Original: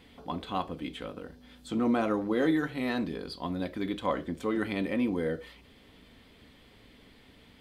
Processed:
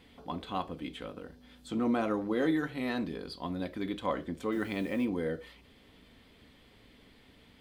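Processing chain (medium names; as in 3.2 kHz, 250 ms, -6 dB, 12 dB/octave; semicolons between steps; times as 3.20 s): 4.52–5.05 s: word length cut 10-bit, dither triangular; trim -2.5 dB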